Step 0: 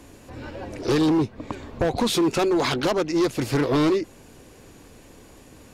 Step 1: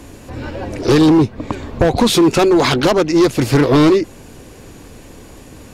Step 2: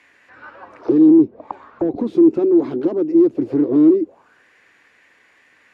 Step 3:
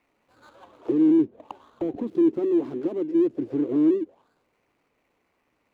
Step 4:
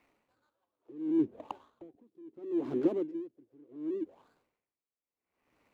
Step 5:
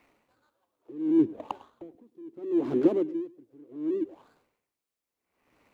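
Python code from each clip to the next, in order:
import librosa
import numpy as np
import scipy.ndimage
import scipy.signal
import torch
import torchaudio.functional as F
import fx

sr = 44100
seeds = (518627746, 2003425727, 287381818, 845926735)

y1 = fx.low_shelf(x, sr, hz=200.0, db=3.5)
y1 = y1 * 10.0 ** (8.5 / 20.0)
y2 = fx.auto_wah(y1, sr, base_hz=320.0, top_hz=2200.0, q=4.4, full_db=-11.5, direction='down')
y2 = y2 * 10.0 ** (1.5 / 20.0)
y3 = scipy.ndimage.median_filter(y2, 25, mode='constant')
y3 = y3 * 10.0 ** (-8.0 / 20.0)
y4 = y3 * 10.0 ** (-34 * (0.5 - 0.5 * np.cos(2.0 * np.pi * 0.71 * np.arange(len(y3)) / sr)) / 20.0)
y5 = y4 + 10.0 ** (-20.5 / 20.0) * np.pad(y4, (int(103 * sr / 1000.0), 0))[:len(y4)]
y5 = y5 * 10.0 ** (6.0 / 20.0)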